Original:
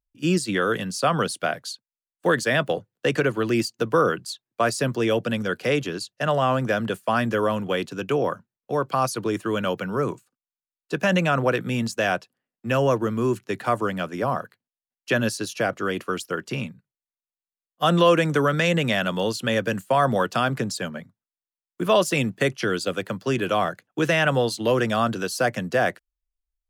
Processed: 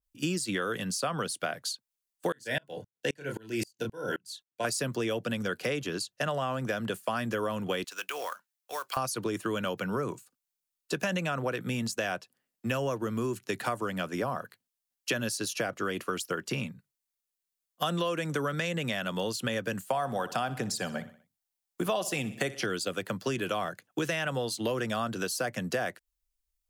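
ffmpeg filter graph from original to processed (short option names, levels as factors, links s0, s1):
-filter_complex "[0:a]asettb=1/sr,asplit=3[s0][s1][s2];[s0]atrim=end=2.324[s3];[s1]atrim=start=2.32:end=4.65,asetpts=PTS-STARTPTS,afade=t=in:d=0.004:c=qsin,afade=t=out:st=2.326:d=0.004:c=qsin,asuperstop=centerf=1200:order=20:qfactor=4.8,asplit=2[s4][s5];[s5]adelay=28,volume=0.447[s6];[s4][s6]amix=inputs=2:normalize=0,atrim=end_sample=102753,aeval=exprs='val(0)*pow(10,-35*if(lt(mod(-3.8*n/s,1),2*abs(-3.8)/1000),1-mod(-3.8*n/s,1)/(2*abs(-3.8)/1000),(mod(-3.8*n/s,1)-2*abs(-3.8)/1000)/(1-2*abs(-3.8)/1000))/20)':c=same[s7];[s2]atrim=start=4.646[s8];[s3][s7]acrossfade=d=0.004:c1=hsin:c2=qsin[s9];[s9][s8]acrossfade=d=0.004:c1=qsin:c2=hsin,asettb=1/sr,asplit=3[s10][s11][s12];[s10]atrim=end=7.844[s13];[s11]atrim=start=7.84:end=8.97,asetpts=PTS-STARTPTS,afade=t=in:d=0.004:c=qsin,afade=t=out:st=1.126:d=0.004:c=qsin,highpass=1100,acompressor=threshold=0.0282:ratio=6:attack=3.2:release=140:knee=1:detection=peak,acrusher=bits=4:mode=log:mix=0:aa=0.000001[s14];[s12]atrim=start=8.966[s15];[s13][s14]acrossfade=d=0.004:c1=hsin:c2=qsin[s16];[s16][s15]acrossfade=d=0.004:c1=qsin:c2=hsin,asettb=1/sr,asplit=3[s17][s18][s19];[s17]atrim=end=19.884[s20];[s18]atrim=start=19.88:end=22.66,asetpts=PTS-STARTPTS,afade=t=in:d=0.004:c=qsin,afade=t=out:st=2.776:d=0.004:c=qsin,equalizer=f=760:t=o:w=0.34:g=8.5,aecho=1:1:61|122|183|244:0.141|0.0664|0.0312|0.0147,atrim=end_sample=122598[s21];[s19]atrim=start=22.656[s22];[s20][s21]acrossfade=d=0.004:c1=hsin:c2=qsin[s23];[s23][s22]acrossfade=d=0.004:c1=qsin:c2=hsin,highshelf=f=3800:g=10,acompressor=threshold=0.0398:ratio=6,adynamicequalizer=threshold=0.00631:dfrequency=2800:dqfactor=0.7:tfrequency=2800:tqfactor=0.7:attack=5:release=100:ratio=0.375:range=2:mode=cutabove:tftype=highshelf"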